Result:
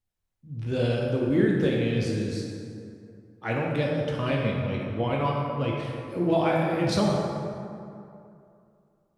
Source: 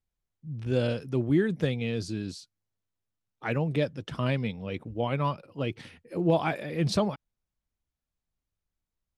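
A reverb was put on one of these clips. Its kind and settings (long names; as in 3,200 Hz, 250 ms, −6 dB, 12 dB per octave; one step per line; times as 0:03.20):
dense smooth reverb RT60 2.6 s, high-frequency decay 0.5×, DRR −3 dB
level −1 dB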